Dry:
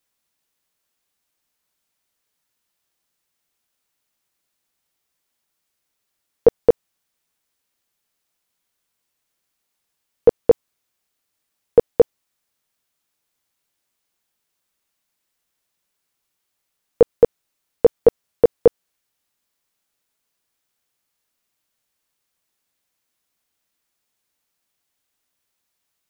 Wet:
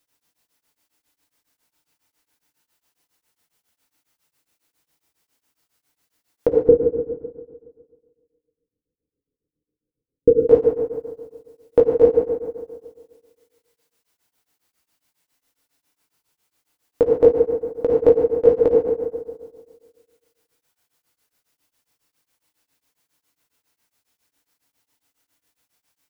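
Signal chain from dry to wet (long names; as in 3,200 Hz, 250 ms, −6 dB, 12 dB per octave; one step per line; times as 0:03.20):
0:06.48–0:10.37: Butterworth low-pass 510 Hz 72 dB per octave
downward compressor, threshold −9 dBFS, peak gain reduction 4 dB
brickwall limiter −8.5 dBFS, peak gain reduction 5.5 dB
feedback delay network reverb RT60 1.7 s, low-frequency decay 1×, high-frequency decay 0.6×, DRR −2.5 dB
tremolo along a rectified sine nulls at 7.3 Hz
level +4 dB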